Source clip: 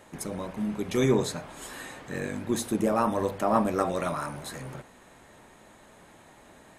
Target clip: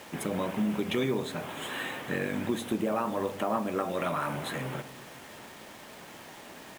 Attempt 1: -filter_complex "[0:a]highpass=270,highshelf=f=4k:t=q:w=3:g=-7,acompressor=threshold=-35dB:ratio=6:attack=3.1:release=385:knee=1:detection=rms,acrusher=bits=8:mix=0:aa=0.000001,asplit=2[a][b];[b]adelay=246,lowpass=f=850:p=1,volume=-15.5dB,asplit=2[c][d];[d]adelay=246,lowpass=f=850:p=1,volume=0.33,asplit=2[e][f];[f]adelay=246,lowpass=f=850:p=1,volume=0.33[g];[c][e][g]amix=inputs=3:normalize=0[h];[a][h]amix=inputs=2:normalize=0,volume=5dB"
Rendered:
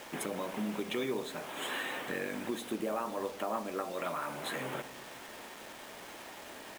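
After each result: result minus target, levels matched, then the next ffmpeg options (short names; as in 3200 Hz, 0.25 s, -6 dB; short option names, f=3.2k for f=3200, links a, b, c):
compressor: peak gain reduction +5.5 dB; 125 Hz band -5.0 dB
-filter_complex "[0:a]highpass=270,highshelf=f=4k:t=q:w=3:g=-7,acompressor=threshold=-28dB:ratio=6:attack=3.1:release=385:knee=1:detection=rms,acrusher=bits=8:mix=0:aa=0.000001,asplit=2[a][b];[b]adelay=246,lowpass=f=850:p=1,volume=-15.5dB,asplit=2[c][d];[d]adelay=246,lowpass=f=850:p=1,volume=0.33,asplit=2[e][f];[f]adelay=246,lowpass=f=850:p=1,volume=0.33[g];[c][e][g]amix=inputs=3:normalize=0[h];[a][h]amix=inputs=2:normalize=0,volume=5dB"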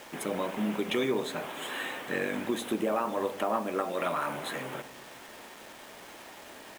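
125 Hz band -6.5 dB
-filter_complex "[0:a]highpass=120,highshelf=f=4k:t=q:w=3:g=-7,acompressor=threshold=-28dB:ratio=6:attack=3.1:release=385:knee=1:detection=rms,acrusher=bits=8:mix=0:aa=0.000001,asplit=2[a][b];[b]adelay=246,lowpass=f=850:p=1,volume=-15.5dB,asplit=2[c][d];[d]adelay=246,lowpass=f=850:p=1,volume=0.33,asplit=2[e][f];[f]adelay=246,lowpass=f=850:p=1,volume=0.33[g];[c][e][g]amix=inputs=3:normalize=0[h];[a][h]amix=inputs=2:normalize=0,volume=5dB"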